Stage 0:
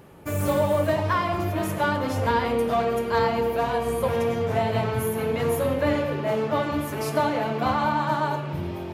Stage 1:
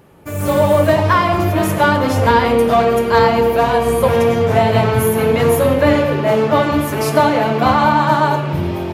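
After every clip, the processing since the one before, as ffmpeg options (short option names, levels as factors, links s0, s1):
-af "dynaudnorm=f=330:g=3:m=3.76,volume=1.12"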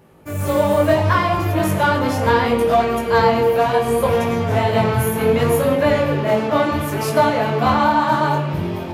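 -af "flanger=delay=18:depth=6.2:speed=0.69"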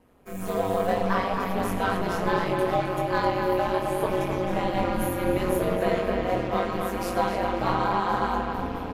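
-filter_complex "[0:a]asplit=2[s0][s1];[s1]adelay=262,lowpass=f=4500:p=1,volume=0.562,asplit=2[s2][s3];[s3]adelay=262,lowpass=f=4500:p=1,volume=0.5,asplit=2[s4][s5];[s5]adelay=262,lowpass=f=4500:p=1,volume=0.5,asplit=2[s6][s7];[s7]adelay=262,lowpass=f=4500:p=1,volume=0.5,asplit=2[s8][s9];[s9]adelay=262,lowpass=f=4500:p=1,volume=0.5,asplit=2[s10][s11];[s11]adelay=262,lowpass=f=4500:p=1,volume=0.5[s12];[s0][s2][s4][s6][s8][s10][s12]amix=inputs=7:normalize=0,aeval=exprs='val(0)*sin(2*PI*93*n/s)':c=same,volume=0.447"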